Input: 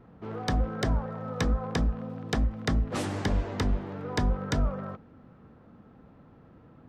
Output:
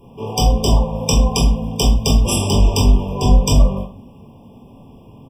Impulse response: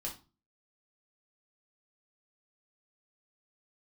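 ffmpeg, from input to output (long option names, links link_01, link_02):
-filter_complex "[0:a]atempo=1.3,crystalizer=i=6.5:c=0[link_01];[1:a]atrim=start_sample=2205,asetrate=33516,aresample=44100[link_02];[link_01][link_02]afir=irnorm=-1:irlink=0,afftfilt=real='re*eq(mod(floor(b*sr/1024/1200),2),0)':imag='im*eq(mod(floor(b*sr/1024/1200),2),0)':win_size=1024:overlap=0.75,volume=8dB"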